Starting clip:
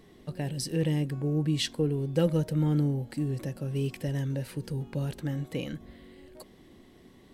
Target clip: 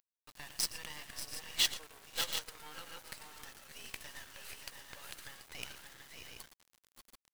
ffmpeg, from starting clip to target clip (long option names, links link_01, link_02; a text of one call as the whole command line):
ffmpeg -i in.wav -af "highpass=frequency=980:width=0.5412,highpass=frequency=980:width=1.3066,aecho=1:1:115|563|575|588|682|733:0.266|0.141|0.251|0.422|0.211|0.422,acrusher=bits=6:dc=4:mix=0:aa=0.000001,volume=1.5dB" out.wav